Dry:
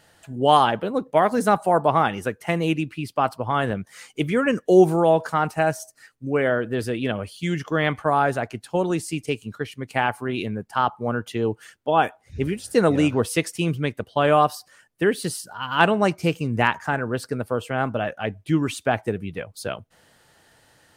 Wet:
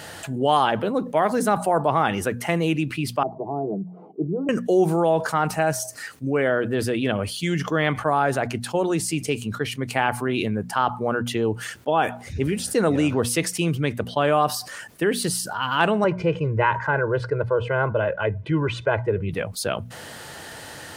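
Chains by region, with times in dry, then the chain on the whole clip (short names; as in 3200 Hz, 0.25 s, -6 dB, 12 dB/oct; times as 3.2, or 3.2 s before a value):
3.23–4.49 Chebyshev band-pass 170–640 Hz, order 3 + fixed phaser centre 360 Hz, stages 8
16.04–19.29 LPF 1900 Hz + comb 2 ms, depth 99%
whole clip: HPF 60 Hz; notches 60/120/180/240 Hz; fast leveller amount 50%; gain -5.5 dB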